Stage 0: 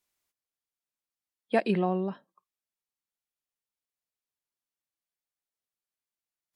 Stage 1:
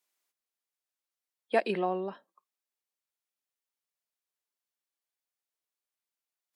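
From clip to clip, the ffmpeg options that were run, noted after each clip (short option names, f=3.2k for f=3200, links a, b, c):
-af "highpass=340"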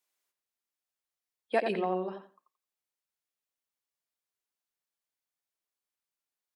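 -filter_complex "[0:a]asplit=2[a][b];[b]adelay=87,lowpass=f=2.1k:p=1,volume=-6dB,asplit=2[c][d];[d]adelay=87,lowpass=f=2.1k:p=1,volume=0.2,asplit=2[e][f];[f]adelay=87,lowpass=f=2.1k:p=1,volume=0.2[g];[a][c][e][g]amix=inputs=4:normalize=0,volume=-1.5dB"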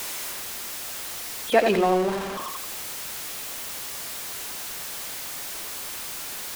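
-af "aeval=exprs='val(0)+0.5*0.02*sgn(val(0))':c=same,volume=8dB"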